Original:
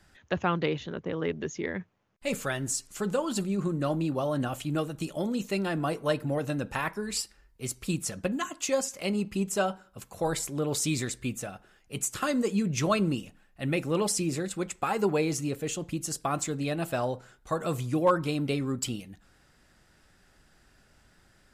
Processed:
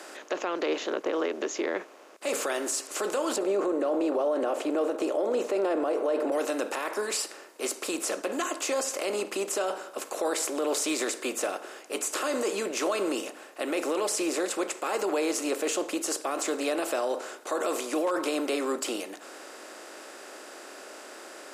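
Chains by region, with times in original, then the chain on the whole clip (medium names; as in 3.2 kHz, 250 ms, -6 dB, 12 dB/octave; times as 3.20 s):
3.36–6.32 s: de-esser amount 30% + low-pass 1.1 kHz 6 dB/octave + peaking EQ 520 Hz +12 dB 1.5 oct
whole clip: spectral levelling over time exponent 0.6; steep high-pass 300 Hz 36 dB/octave; peak limiter -19.5 dBFS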